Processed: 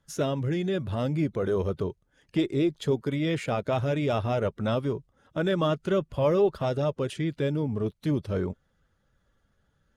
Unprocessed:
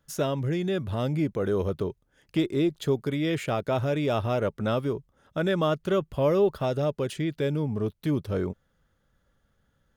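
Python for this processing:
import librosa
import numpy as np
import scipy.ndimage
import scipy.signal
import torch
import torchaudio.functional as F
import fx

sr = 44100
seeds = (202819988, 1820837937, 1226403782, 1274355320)

y = fx.spec_quant(x, sr, step_db=15)
y = scipy.signal.sosfilt(scipy.signal.butter(2, 10000.0, 'lowpass', fs=sr, output='sos'), y)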